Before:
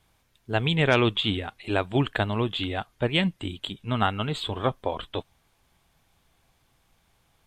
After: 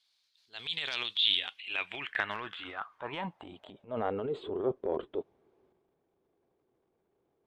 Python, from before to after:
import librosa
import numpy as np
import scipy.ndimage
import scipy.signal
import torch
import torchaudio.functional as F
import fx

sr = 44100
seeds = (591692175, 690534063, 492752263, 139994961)

y = fx.filter_sweep_bandpass(x, sr, from_hz=4300.0, to_hz=390.0, start_s=1.06, end_s=4.42, q=5.1)
y = fx.transient(y, sr, attack_db=-6, sustain_db=8)
y = y * librosa.db_to_amplitude(6.5)